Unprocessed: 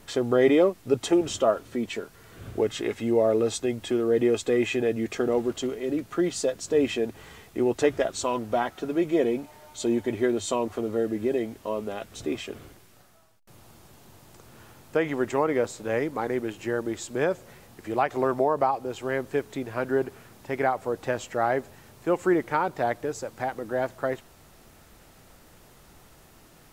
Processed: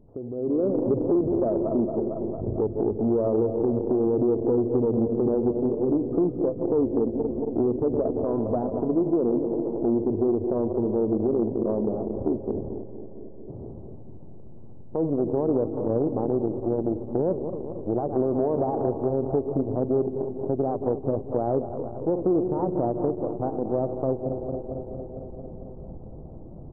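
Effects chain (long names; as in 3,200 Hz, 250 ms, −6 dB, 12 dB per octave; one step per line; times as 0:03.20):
feedback delay that plays each chunk backwards 113 ms, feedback 84%, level −12 dB
brickwall limiter −16.5 dBFS, peak gain reduction 7.5 dB
Gaussian smoothing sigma 15 samples
downward compressor 3 to 1, threshold −37 dBFS, peak gain reduction 10.5 dB
repeating echo 168 ms, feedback 48%, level −20.5 dB
automatic gain control gain up to 15.5 dB
saturating transformer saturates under 240 Hz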